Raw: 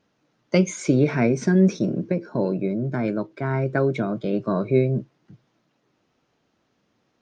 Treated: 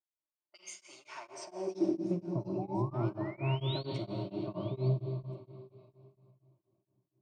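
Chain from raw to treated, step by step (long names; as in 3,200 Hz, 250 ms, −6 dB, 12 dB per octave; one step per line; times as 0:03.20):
notch filter 1,000 Hz, Q 11
hum removal 62.9 Hz, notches 35
low-pass that shuts in the quiet parts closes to 380 Hz, open at −17.5 dBFS
EQ curve with evenly spaced ripples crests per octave 1.3, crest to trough 11 dB
brickwall limiter −15 dBFS, peak gain reduction 9.5 dB
soft clipping −14.5 dBFS, distortion −24 dB
sound drawn into the spectrogram rise, 0:02.58–0:03.86, 720–4,600 Hz −33 dBFS
phaser with its sweep stopped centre 330 Hz, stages 8
echo through a band-pass that steps 344 ms, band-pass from 570 Hz, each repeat 1.4 octaves, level −11 dB
high-pass filter sweep 1,700 Hz → 82 Hz, 0:01.04–0:02.53
convolution reverb RT60 2.9 s, pre-delay 31 ms, DRR 5 dB
tremolo along a rectified sine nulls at 4.3 Hz
level −6.5 dB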